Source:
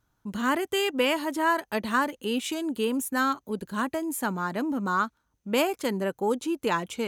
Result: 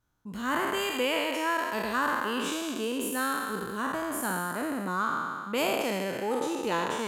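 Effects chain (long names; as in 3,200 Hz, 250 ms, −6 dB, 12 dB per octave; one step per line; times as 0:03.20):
peak hold with a decay on every bin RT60 2.05 s
level −6.5 dB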